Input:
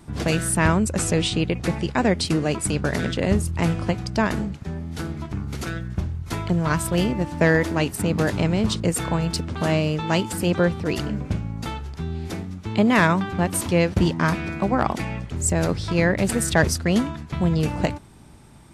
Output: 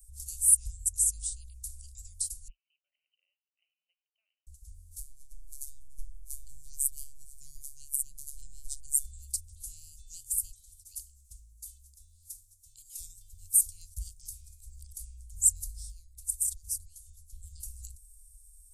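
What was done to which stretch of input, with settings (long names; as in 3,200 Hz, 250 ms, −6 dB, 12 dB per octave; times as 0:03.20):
0:02.48–0:04.47: linear-phase brick-wall band-pass 490–3,100 Hz
0:05.00–0:09.04: phases set to zero 141 Hz
0:10.50–0:13.00: low-shelf EQ 420 Hz −11 dB
0:15.90–0:17.43: downward compressor 12 to 1, threshold −24 dBFS
whole clip: inverse Chebyshev band-stop filter 200–1,800 Hz, stop band 80 dB; level +6.5 dB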